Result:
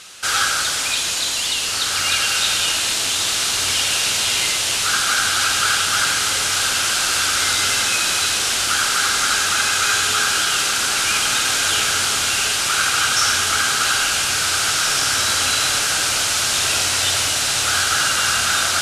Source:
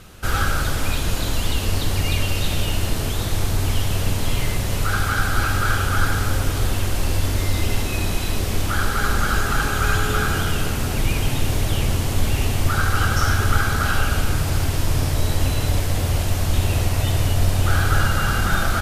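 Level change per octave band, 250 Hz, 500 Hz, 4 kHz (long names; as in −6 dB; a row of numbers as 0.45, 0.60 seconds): −9.5, −3.5, +12.5 decibels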